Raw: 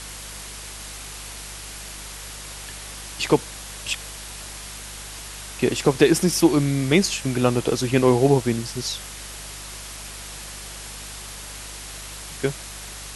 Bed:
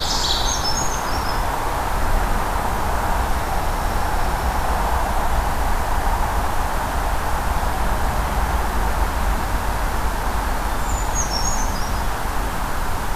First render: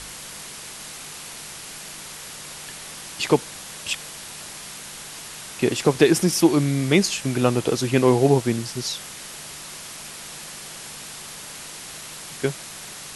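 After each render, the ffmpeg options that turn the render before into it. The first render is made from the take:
-af "bandreject=f=50:t=h:w=4,bandreject=f=100:t=h:w=4"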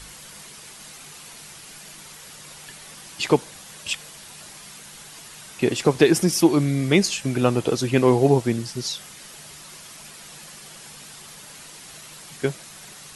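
-af "afftdn=nr=7:nf=-38"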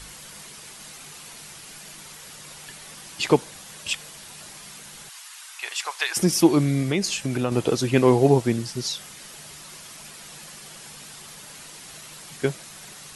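-filter_complex "[0:a]asettb=1/sr,asplit=3[a][b][c];[a]atrim=end=5.094[d];[b]atrim=start=5.09:end=6.17,asetpts=PTS-STARTPTS,afade=t=in:d=0.004:c=qsin,afade=t=out:st=1.076:d=0.004:c=qsin,highpass=f=930:w=0.5412,highpass=f=930:w=1.3066[e];[c]atrim=start=6.166[f];[d][e]acrossfade=d=0.004:c1=hsin:c2=qsin[g];[g][f]acrossfade=d=0.004:c1=qsin:c2=hsin,asettb=1/sr,asplit=3[h][i][j];[h]atrim=end=6.824[k];[i]atrim=start=6.82:end=7.52,asetpts=PTS-STARTPTS,afade=t=in:d=0.004:c=qsin,afade=t=out:st=0.696:d=0.004:c=qsin,acompressor=threshold=-21dB:ratio=2.5:attack=3.2:release=140:knee=1:detection=peak[l];[j]atrim=start=7.516[m];[k][l]acrossfade=d=0.004:c1=hsin:c2=qsin[n];[n][m]acrossfade=d=0.004:c1=qsin:c2=hsin"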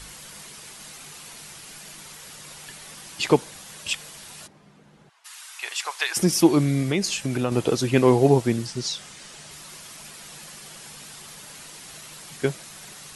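-filter_complex "[0:a]asplit=3[a][b][c];[a]afade=t=out:st=4.46:d=0.02[d];[b]bandpass=f=230:t=q:w=0.63,afade=t=in:st=4.46:d=0.02,afade=t=out:st=5.24:d=0.02[e];[c]afade=t=in:st=5.24:d=0.02[f];[d][e][f]amix=inputs=3:normalize=0,asettb=1/sr,asplit=3[g][h][i];[g]atrim=end=8.674[j];[h]atrim=start=8.67:end=9.51,asetpts=PTS-STARTPTS,afade=t=in:d=0.004:c=qsin,afade=t=out:st=0.836:d=0.004:c=qsin,lowpass=f=9.2k:w=0.5412,lowpass=f=9.2k:w=1.3066[k];[i]atrim=start=9.506[l];[j][k]acrossfade=d=0.004:c1=hsin:c2=qsin[m];[m][l]acrossfade=d=0.004:c1=qsin:c2=hsin"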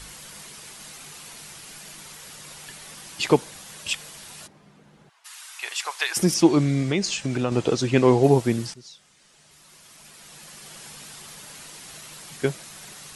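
-filter_complex "[0:a]asettb=1/sr,asplit=3[a][b][c];[a]atrim=end=6.344[d];[b]atrim=start=6.34:end=8.24,asetpts=PTS-STARTPTS,afade=t=in:d=0.004:c=qsin,afade=t=out:st=1.896:d=0.004:c=qsin,lowpass=f=8.1k:w=0.5412,lowpass=f=8.1k:w=1.3066[e];[c]atrim=start=8.236[f];[d][e]acrossfade=d=0.004:c1=hsin:c2=qsin[g];[g][f]acrossfade=d=0.004:c1=qsin:c2=hsin,asplit=2[h][i];[h]atrim=end=8.74,asetpts=PTS-STARTPTS,afade=t=out:st=8.736:d=0.004:c=hsin:silence=0.141254[j];[i]atrim=start=8.74,asetpts=PTS-STARTPTS,afade=t=in:d=2.05:c=qua:silence=0.141254[k];[j][k]concat=n=2:v=0:a=1"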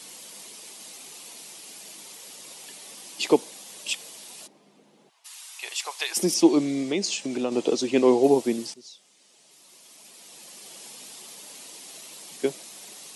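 -af "highpass=f=230:w=0.5412,highpass=f=230:w=1.3066,equalizer=f=1.5k:t=o:w=0.97:g=-10.5"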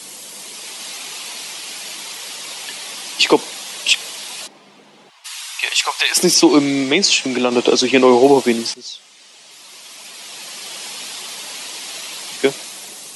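-filter_complex "[0:a]acrossover=split=120|840|5300[a][b][c][d];[c]dynaudnorm=f=110:g=11:m=9dB[e];[a][b][e][d]amix=inputs=4:normalize=0,alimiter=level_in=8.5dB:limit=-1dB:release=50:level=0:latency=1"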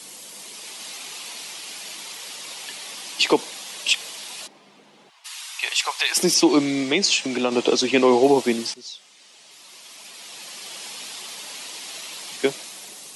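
-af "volume=-5.5dB"

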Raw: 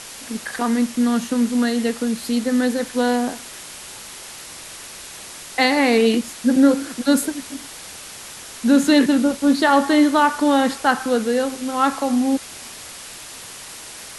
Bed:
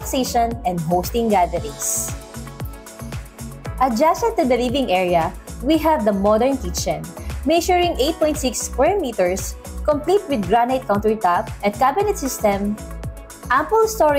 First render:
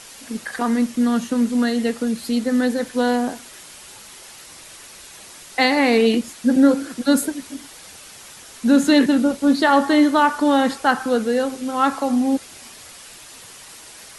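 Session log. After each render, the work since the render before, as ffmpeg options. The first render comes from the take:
-af "afftdn=nr=6:nf=-37"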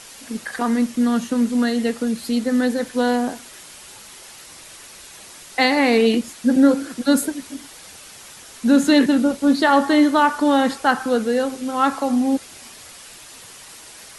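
-af anull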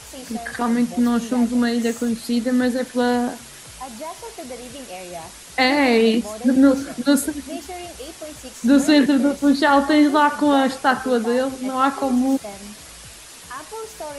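-filter_complex "[1:a]volume=-17.5dB[a];[0:a][a]amix=inputs=2:normalize=0"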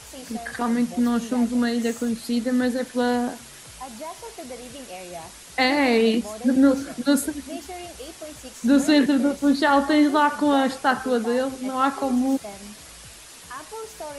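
-af "volume=-3dB"

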